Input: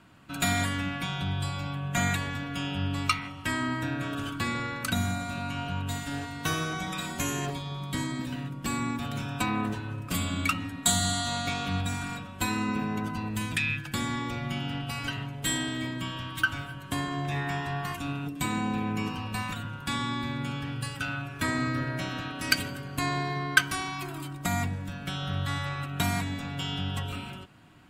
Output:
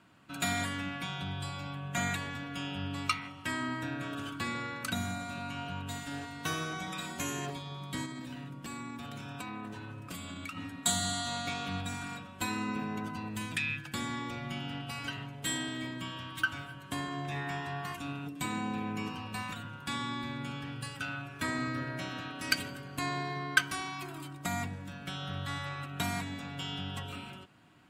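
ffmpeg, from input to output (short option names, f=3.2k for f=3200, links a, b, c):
-filter_complex "[0:a]asettb=1/sr,asplit=3[a][b][c];[a]atrim=end=8.054[d];[b]atrim=start=8.05:end=10.57,asetpts=PTS-STARTPTS,afade=t=in:d=0.004:c=qsin,afade=t=out:st=2.516:d=0.004:c=qsin,acompressor=threshold=-32dB:ratio=6:attack=3.2:release=140:knee=1:detection=peak[e];[c]atrim=start=10.566[f];[d][e]acrossfade=d=0.004:c1=hsin:c2=qsin[g];[g][f]acrossfade=d=0.004:c1=qsin:c2=hsin,highpass=f=130:p=1,equalizer=f=14k:t=o:w=0.63:g=-3,volume=-4.5dB"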